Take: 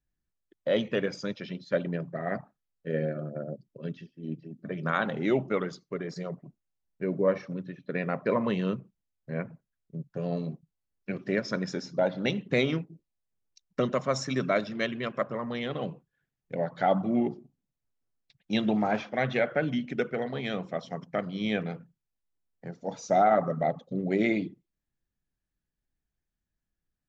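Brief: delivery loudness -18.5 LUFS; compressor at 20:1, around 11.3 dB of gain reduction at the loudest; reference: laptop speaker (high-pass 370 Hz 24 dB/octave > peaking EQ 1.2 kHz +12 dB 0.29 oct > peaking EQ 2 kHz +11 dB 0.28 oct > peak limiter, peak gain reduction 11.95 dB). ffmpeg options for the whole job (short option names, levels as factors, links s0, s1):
-af "acompressor=threshold=0.0355:ratio=20,highpass=f=370:w=0.5412,highpass=f=370:w=1.3066,equalizer=f=1200:t=o:w=0.29:g=12,equalizer=f=2000:t=o:w=0.28:g=11,volume=11.9,alimiter=limit=0.562:level=0:latency=1"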